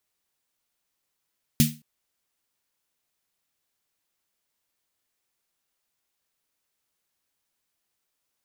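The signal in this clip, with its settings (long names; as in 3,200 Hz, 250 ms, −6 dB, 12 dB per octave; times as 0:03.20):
synth snare length 0.22 s, tones 150 Hz, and 230 Hz, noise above 2,100 Hz, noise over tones −4.5 dB, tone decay 0.29 s, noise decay 0.27 s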